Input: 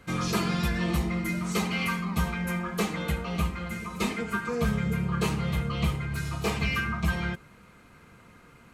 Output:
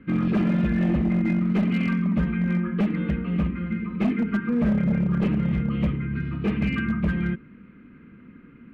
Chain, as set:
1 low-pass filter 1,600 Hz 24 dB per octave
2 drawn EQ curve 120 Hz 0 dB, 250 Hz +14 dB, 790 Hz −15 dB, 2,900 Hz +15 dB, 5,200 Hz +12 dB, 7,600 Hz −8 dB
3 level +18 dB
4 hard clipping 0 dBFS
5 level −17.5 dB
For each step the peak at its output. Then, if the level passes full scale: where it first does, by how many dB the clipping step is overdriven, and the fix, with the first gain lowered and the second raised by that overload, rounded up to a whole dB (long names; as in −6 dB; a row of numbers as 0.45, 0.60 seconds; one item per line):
−15.5, −8.0, +10.0, 0.0, −17.5 dBFS
step 3, 10.0 dB
step 3 +8 dB, step 5 −7.5 dB